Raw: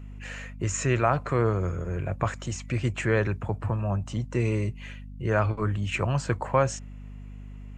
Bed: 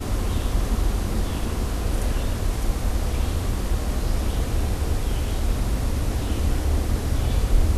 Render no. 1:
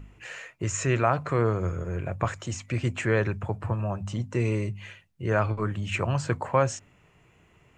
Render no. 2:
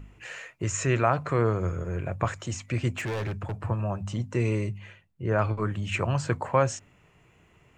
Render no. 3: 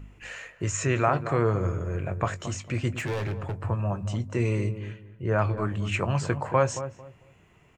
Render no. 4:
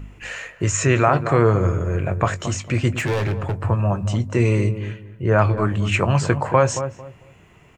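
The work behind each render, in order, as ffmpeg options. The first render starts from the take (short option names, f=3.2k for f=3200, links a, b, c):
-af "bandreject=f=50:t=h:w=4,bandreject=f=100:t=h:w=4,bandreject=f=150:t=h:w=4,bandreject=f=200:t=h:w=4,bandreject=f=250:t=h:w=4"
-filter_complex "[0:a]asettb=1/sr,asplit=3[a][b][c];[a]atrim=end=2.974[d];[b]atrim=start=2.97:end=3.59,asetpts=PTS-STARTPTS,afade=t=in:d=0.004:c=qsin,afade=t=out:st=0.616:d=0.004:c=qsin,asoftclip=type=hard:threshold=-28dB[e];[c]atrim=start=3.586[f];[d][e]acrossfade=d=0.004:c1=hsin:c2=qsin[g];[g][f]acrossfade=d=0.004:c1=qsin:c2=hsin,asettb=1/sr,asplit=3[h][i][j];[h]atrim=end=4.784[k];[i]atrim=start=4.78:end=5.39,asetpts=PTS-STARTPTS,afade=t=in:d=0.004:c=qsin,afade=t=out:st=0.606:d=0.004:c=qsin,highshelf=f=2.1k:g=-9.5[l];[j]atrim=start=5.386[m];[k][l]acrossfade=d=0.004:c1=hsin:c2=qsin[n];[n][m]acrossfade=d=0.004:c1=qsin:c2=hsin"
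-filter_complex "[0:a]asplit=2[a][b];[b]adelay=20,volume=-12.5dB[c];[a][c]amix=inputs=2:normalize=0,asplit=2[d][e];[e]adelay=224,lowpass=f=900:p=1,volume=-10dB,asplit=2[f][g];[g]adelay=224,lowpass=f=900:p=1,volume=0.26,asplit=2[h][i];[i]adelay=224,lowpass=f=900:p=1,volume=0.26[j];[f][h][j]amix=inputs=3:normalize=0[k];[d][k]amix=inputs=2:normalize=0"
-af "volume=8dB,alimiter=limit=-3dB:level=0:latency=1"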